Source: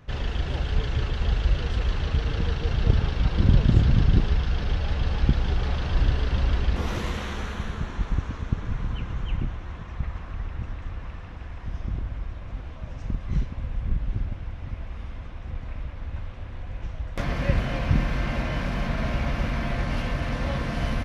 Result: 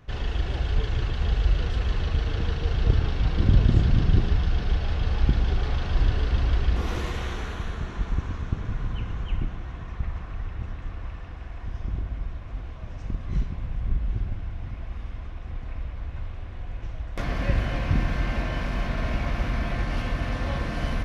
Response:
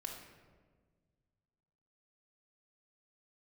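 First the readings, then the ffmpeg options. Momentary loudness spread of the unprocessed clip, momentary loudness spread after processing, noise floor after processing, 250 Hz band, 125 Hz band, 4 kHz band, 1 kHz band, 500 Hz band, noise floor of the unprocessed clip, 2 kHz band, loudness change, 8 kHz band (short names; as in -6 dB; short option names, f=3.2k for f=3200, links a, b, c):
14 LU, 13 LU, -37 dBFS, -2.0 dB, -0.5 dB, -1.5 dB, -1.0 dB, -1.0 dB, -38 dBFS, -1.0 dB, -0.5 dB, n/a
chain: -filter_complex "[0:a]asplit=2[a][b];[1:a]atrim=start_sample=2205[c];[b][c]afir=irnorm=-1:irlink=0,volume=1dB[d];[a][d]amix=inputs=2:normalize=0,volume=-6dB"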